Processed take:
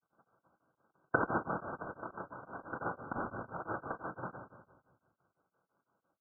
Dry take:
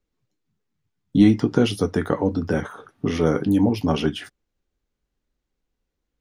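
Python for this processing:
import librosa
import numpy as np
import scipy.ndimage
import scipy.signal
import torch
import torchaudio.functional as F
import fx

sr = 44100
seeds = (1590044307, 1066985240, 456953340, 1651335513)

y = fx.low_shelf(x, sr, hz=240.0, db=6.5)
y = fx.hum_notches(y, sr, base_hz=50, count=4)
y = fx.gate_flip(y, sr, shuts_db=-15.0, range_db=-27)
y = fx.granulator(y, sr, seeds[0], grain_ms=100.0, per_s=20.0, spray_ms=100.0, spread_st=0)
y = fx.noise_vocoder(y, sr, seeds[1], bands=1)
y = fx.brickwall_lowpass(y, sr, high_hz=1600.0)
y = fx.echo_feedback(y, sr, ms=178, feedback_pct=42, wet_db=-14)
y = fx.room_shoebox(y, sr, seeds[2], volume_m3=360.0, walls='mixed', distance_m=0.69)
y = y * np.abs(np.cos(np.pi * 5.9 * np.arange(len(y)) / sr))
y = F.gain(torch.from_numpy(y), 11.5).numpy()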